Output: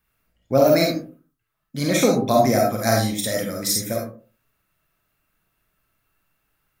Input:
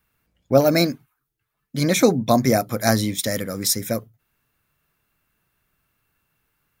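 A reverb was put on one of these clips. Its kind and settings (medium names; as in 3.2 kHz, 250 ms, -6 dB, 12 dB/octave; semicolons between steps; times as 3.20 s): algorithmic reverb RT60 0.4 s, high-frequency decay 0.45×, pre-delay 10 ms, DRR -1 dB; trim -3.5 dB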